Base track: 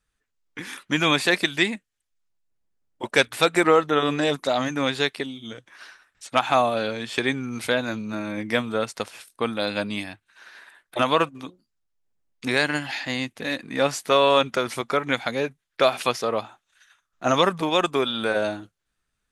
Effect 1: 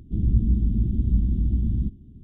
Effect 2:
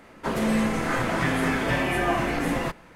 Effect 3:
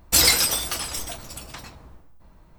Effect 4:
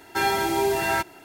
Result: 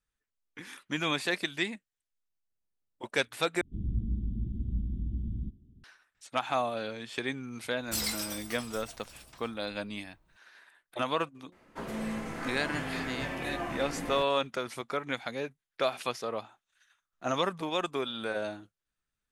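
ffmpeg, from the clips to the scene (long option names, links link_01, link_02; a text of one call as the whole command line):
ffmpeg -i bed.wav -i cue0.wav -i cue1.wav -i cue2.wav -filter_complex "[0:a]volume=-10dB,asplit=2[link_01][link_02];[link_01]atrim=end=3.614[link_03];[1:a]atrim=end=2.23,asetpts=PTS-STARTPTS,volume=-11.5dB[link_04];[link_02]atrim=start=5.836[link_05];[3:a]atrim=end=2.58,asetpts=PTS-STARTPTS,volume=-16dB,afade=type=in:duration=0.004:curve=hsin,afade=type=out:start_time=2.576:duration=0.004:curve=hsin,adelay=7790[link_06];[2:a]atrim=end=2.95,asetpts=PTS-STARTPTS,volume=-12dB,afade=type=in:duration=0.004:curve=hsin,afade=type=out:start_time=2.946:duration=0.004:curve=hsin,adelay=11520[link_07];[link_03][link_04]acrossfade=duration=0.004:curve1=hsin:curve2=hsin[link_08];[link_08][link_05]acrossfade=duration=0.004:curve1=hsin:curve2=hsin[link_09];[link_09][link_06][link_07]amix=inputs=3:normalize=0" out.wav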